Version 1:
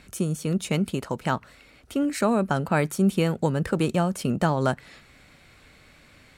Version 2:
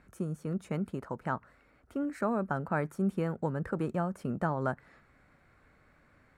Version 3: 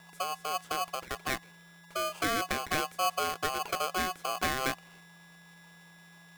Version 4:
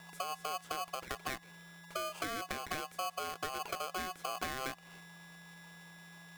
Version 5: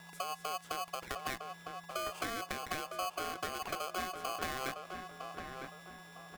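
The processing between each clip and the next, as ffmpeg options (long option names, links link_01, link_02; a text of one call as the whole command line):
ffmpeg -i in.wav -af "highshelf=frequency=2200:width_type=q:width=1.5:gain=-11.5,volume=-9dB" out.wav
ffmpeg -i in.wav -af "aeval=exprs='val(0)+0.00224*sin(2*PI*750*n/s)':channel_layout=same,aeval=exprs='val(0)*sgn(sin(2*PI*920*n/s))':channel_layout=same" out.wav
ffmpeg -i in.wav -af "acompressor=threshold=-37dB:ratio=6,volume=1dB" out.wav
ffmpeg -i in.wav -filter_complex "[0:a]asplit=2[link_01][link_02];[link_02]adelay=957,lowpass=frequency=1800:poles=1,volume=-5dB,asplit=2[link_03][link_04];[link_04]adelay=957,lowpass=frequency=1800:poles=1,volume=0.39,asplit=2[link_05][link_06];[link_06]adelay=957,lowpass=frequency=1800:poles=1,volume=0.39,asplit=2[link_07][link_08];[link_08]adelay=957,lowpass=frequency=1800:poles=1,volume=0.39,asplit=2[link_09][link_10];[link_10]adelay=957,lowpass=frequency=1800:poles=1,volume=0.39[link_11];[link_01][link_03][link_05][link_07][link_09][link_11]amix=inputs=6:normalize=0" out.wav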